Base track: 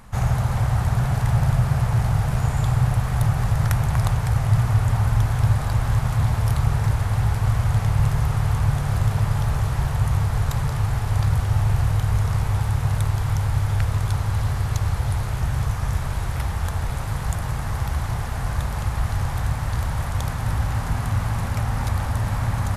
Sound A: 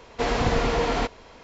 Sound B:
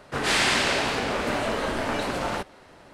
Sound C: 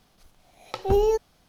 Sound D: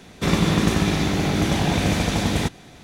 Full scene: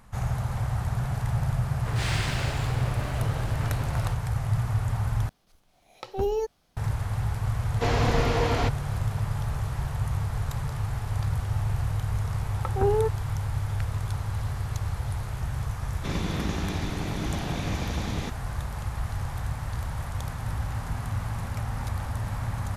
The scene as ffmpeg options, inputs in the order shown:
-filter_complex "[3:a]asplit=2[s0][s1];[0:a]volume=0.422[s2];[2:a]aeval=exprs='sgn(val(0))*max(abs(val(0))-0.0133,0)':c=same[s3];[s1]lowpass=f=1500:t=q:w=2.5[s4];[4:a]aresample=16000,aresample=44100[s5];[s2]asplit=2[s6][s7];[s6]atrim=end=5.294[s8];[s0]atrim=end=1.48,asetpts=PTS-STARTPTS,volume=0.501[s9];[s7]atrim=start=6.766[s10];[s3]atrim=end=2.93,asetpts=PTS-STARTPTS,volume=0.355,afade=t=in:d=0.004:c=hsin,afade=t=out:st=2.926:d=0.004:c=hsin,adelay=1720[s11];[1:a]atrim=end=1.43,asetpts=PTS-STARTPTS,volume=0.794,afade=t=in:d=0.004:c=hsin,afade=t=out:st=1.426:d=0.004:c=hsin,adelay=336042S[s12];[s4]atrim=end=1.48,asetpts=PTS-STARTPTS,volume=0.631,afade=t=in:d=0.004:c=hsin,afade=t=out:st=1.476:d=0.004:c=hsin,adelay=11910[s13];[s5]atrim=end=2.83,asetpts=PTS-STARTPTS,volume=0.266,afade=t=in:d=0.004:c=hsin,afade=t=out:st=2.826:d=0.004:c=hsin,adelay=15820[s14];[s8][s9]acrossfade=d=0.004:c1=hsin:c2=hsin[s15];[s15][s10]acrossfade=d=0.004:c1=hsin:c2=hsin[s16];[s16][s11][s12][s13][s14]amix=inputs=5:normalize=0"

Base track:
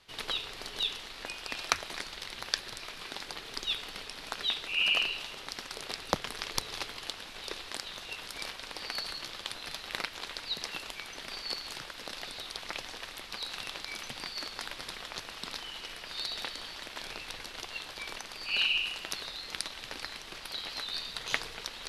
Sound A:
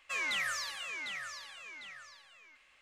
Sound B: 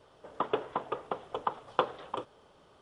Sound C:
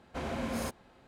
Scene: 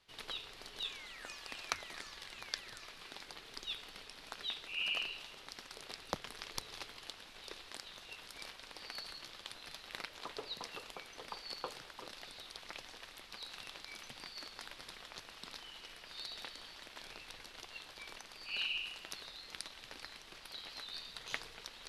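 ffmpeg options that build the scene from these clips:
-filter_complex "[0:a]volume=0.335[s0];[1:a]acompressor=threshold=0.00501:ratio=6:attack=3.2:release=140:knee=1:detection=peak,atrim=end=2.81,asetpts=PTS-STARTPTS,volume=0.531,afade=t=in:d=0.004:c=hsin,afade=t=out:st=2.806:d=0.004:c=hsin,adelay=750[s1];[2:a]atrim=end=2.81,asetpts=PTS-STARTPTS,volume=0.158,afade=t=in:d=0.004:c=hsin,afade=t=out:st=2.806:d=0.004:c=hsin,adelay=9850[s2];[s0][s1][s2]amix=inputs=3:normalize=0"

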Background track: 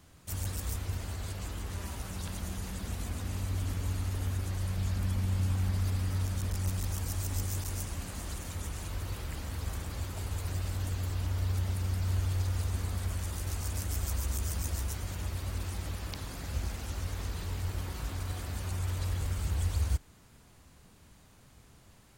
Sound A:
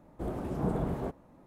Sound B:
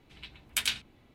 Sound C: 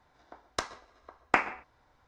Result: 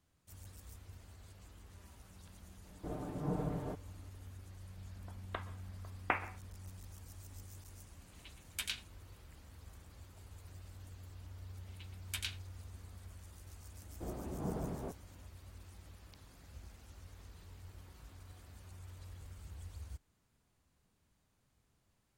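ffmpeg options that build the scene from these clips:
-filter_complex "[1:a]asplit=2[s0][s1];[2:a]asplit=2[s2][s3];[0:a]volume=0.119[s4];[s0]aecho=1:1:6.7:0.65[s5];[3:a]aresample=8000,aresample=44100[s6];[s5]atrim=end=1.46,asetpts=PTS-STARTPTS,volume=0.398,afade=t=in:d=0.004:c=hsin,afade=t=out:st=1.456:d=0.004:c=hsin,adelay=2640[s7];[s6]atrim=end=2.07,asetpts=PTS-STARTPTS,volume=0.355,afade=t=in:d=0.004:c=hsin,afade=t=out:st=2.066:d=0.004:c=hsin,adelay=4760[s8];[s2]atrim=end=1.14,asetpts=PTS-STARTPTS,volume=0.299,afade=t=in:d=0.004:c=hsin,afade=t=out:st=1.136:d=0.004:c=hsin,adelay=353682S[s9];[s3]atrim=end=1.14,asetpts=PTS-STARTPTS,volume=0.266,afade=t=in:d=0.004:c=hsin,afade=t=out:st=1.136:d=0.004:c=hsin,adelay=11570[s10];[s1]atrim=end=1.46,asetpts=PTS-STARTPTS,volume=0.376,afade=t=in:d=0.004:c=hsin,afade=t=out:st=1.456:d=0.004:c=hsin,adelay=13810[s11];[s4][s7][s8][s9][s10][s11]amix=inputs=6:normalize=0"

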